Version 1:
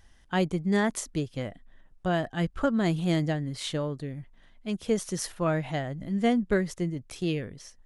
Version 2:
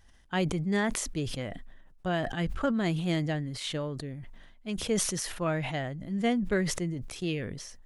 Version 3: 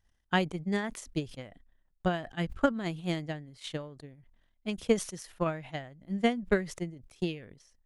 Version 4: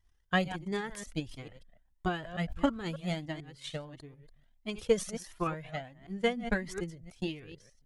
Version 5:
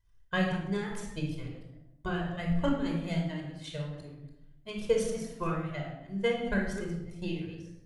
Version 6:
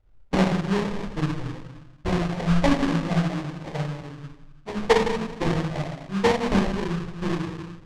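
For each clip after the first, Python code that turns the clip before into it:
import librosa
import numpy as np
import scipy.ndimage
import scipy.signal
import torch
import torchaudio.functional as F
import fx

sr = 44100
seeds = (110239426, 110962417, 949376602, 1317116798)

y1 = fx.dynamic_eq(x, sr, hz=2500.0, q=1.2, threshold_db=-47.0, ratio=4.0, max_db=4)
y1 = fx.sustainer(y1, sr, db_per_s=42.0)
y1 = y1 * 10.0 ** (-3.5 / 20.0)
y2 = fx.transient(y1, sr, attack_db=9, sustain_db=-8)
y2 = fx.upward_expand(y2, sr, threshold_db=-45.0, expansion=1.5)
y2 = y2 * 10.0 ** (-1.5 / 20.0)
y3 = fx.reverse_delay(y2, sr, ms=148, wet_db=-13)
y3 = fx.comb_cascade(y3, sr, direction='rising', hz=1.5)
y3 = y3 * 10.0 ** (3.0 / 20.0)
y4 = fx.room_shoebox(y3, sr, seeds[0], volume_m3=2500.0, walls='furnished', distance_m=5.1)
y4 = y4 * 10.0 ** (-5.0 / 20.0)
y5 = fx.sample_hold(y4, sr, seeds[1], rate_hz=1400.0, jitter_pct=20)
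y5 = fx.air_absorb(y5, sr, metres=98.0)
y5 = y5 * 10.0 ** (8.5 / 20.0)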